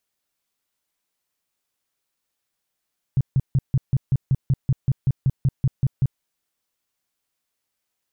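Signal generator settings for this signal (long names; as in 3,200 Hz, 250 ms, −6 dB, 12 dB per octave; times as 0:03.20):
tone bursts 133 Hz, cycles 5, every 0.19 s, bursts 16, −14 dBFS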